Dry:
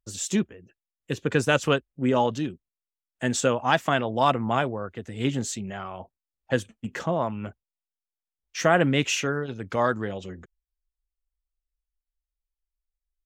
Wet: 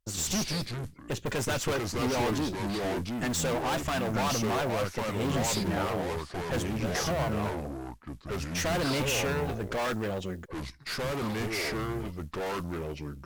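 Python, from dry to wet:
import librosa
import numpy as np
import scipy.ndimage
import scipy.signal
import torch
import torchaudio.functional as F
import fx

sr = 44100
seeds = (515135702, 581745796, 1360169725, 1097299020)

y = fx.mod_noise(x, sr, seeds[0], snr_db=28)
y = fx.tube_stage(y, sr, drive_db=34.0, bias=0.65)
y = fx.echo_pitch(y, sr, ms=91, semitones=-4, count=2, db_per_echo=-3.0)
y = y * librosa.db_to_amplitude(6.0)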